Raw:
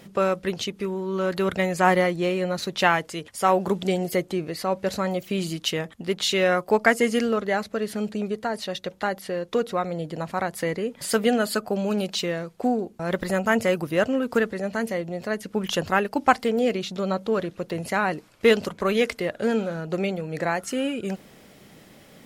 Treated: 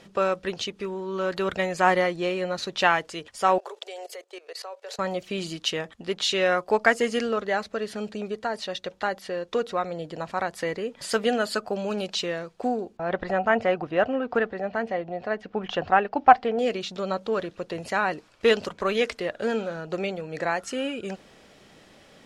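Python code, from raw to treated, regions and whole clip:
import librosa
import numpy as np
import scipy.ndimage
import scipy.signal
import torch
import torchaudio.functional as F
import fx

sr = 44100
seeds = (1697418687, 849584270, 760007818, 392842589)

y = fx.chain(x, sr, fx.cheby1_highpass(hz=420.0, order=5),
    fx.high_shelf(hz=6800.0, db=4.0),
    fx.level_steps(step_db=18), at=(3.58, 4.99))
y = fx.chain(y, sr, fx.lowpass(hz=2700.0, slope=12),
    fx.peak_eq(hz=740.0, db=10.5, octaves=0.21), at=(12.97, 16.59))
y = scipy.signal.sosfilt(scipy.signal.butter(2, 7000.0, 'lowpass', fs=sr, output='sos'), y)
y = fx.peak_eq(y, sr, hz=160.0, db=-7.0, octaves=2.1)
y = fx.notch(y, sr, hz=2100.0, q=18.0)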